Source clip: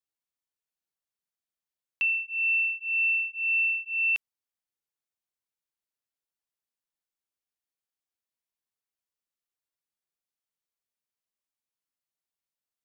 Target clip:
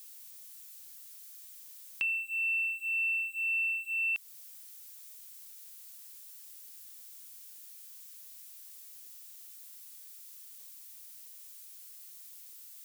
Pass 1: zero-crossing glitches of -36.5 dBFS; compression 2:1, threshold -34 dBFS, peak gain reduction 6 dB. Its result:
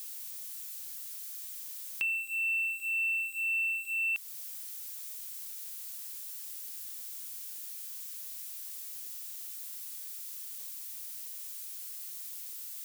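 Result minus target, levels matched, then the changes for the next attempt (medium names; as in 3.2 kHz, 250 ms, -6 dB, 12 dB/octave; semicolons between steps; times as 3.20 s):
zero-crossing glitches: distortion +8 dB
change: zero-crossing glitches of -44.5 dBFS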